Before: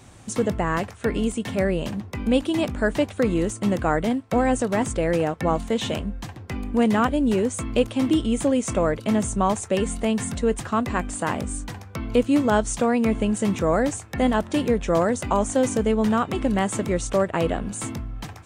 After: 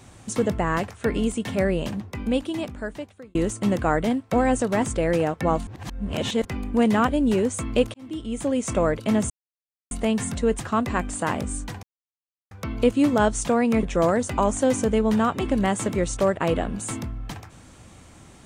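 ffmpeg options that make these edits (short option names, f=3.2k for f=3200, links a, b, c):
-filter_complex "[0:a]asplit=9[a][b][c][d][e][f][g][h][i];[a]atrim=end=3.35,asetpts=PTS-STARTPTS,afade=t=out:st=1.87:d=1.48[j];[b]atrim=start=3.35:end=5.672,asetpts=PTS-STARTPTS,afade=t=in:d=0.004:c=hsin[k];[c]atrim=start=5.668:end=6.452,asetpts=PTS-STARTPTS,areverse[l];[d]atrim=start=6.448:end=7.94,asetpts=PTS-STARTPTS,afade=t=out:st=1.488:d=0.004:c=hsin[m];[e]atrim=start=7.94:end=9.3,asetpts=PTS-STARTPTS,afade=t=in:d=0.82,afade=t=out:st=1.356:d=0.004:c=hsin[n];[f]atrim=start=9.3:end=9.91,asetpts=PTS-STARTPTS,volume=0[o];[g]atrim=start=9.91:end=11.83,asetpts=PTS-STARTPTS,afade=t=in:d=0.004:c=hsin,afade=t=out:st=1.916:d=0.004:c=hsin,apad=pad_dur=0.68[p];[h]atrim=start=11.83:end=13.152,asetpts=PTS-STARTPTS,afade=t=in:d=0.004:c=hsin[q];[i]atrim=start=14.758[r];[j][k]concat=n=2:v=0:a=1[s];[s][l]acrossfade=d=0.004:c1=hsin:c2=hsin[t];[m][n][o][p][q]concat=n=5:v=0:a=1[u];[t][u]acrossfade=d=0.004:c1=hsin:c2=hsin[v];[v][r]acrossfade=d=0.004:c1=hsin:c2=hsin"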